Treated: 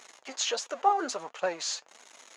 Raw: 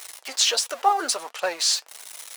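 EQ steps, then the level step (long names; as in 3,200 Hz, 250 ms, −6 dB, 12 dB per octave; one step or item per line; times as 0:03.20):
head-to-tape spacing loss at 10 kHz 23 dB
parametric band 130 Hz +13 dB 1.7 octaves
parametric band 6,700 Hz +13.5 dB 0.23 octaves
−3.0 dB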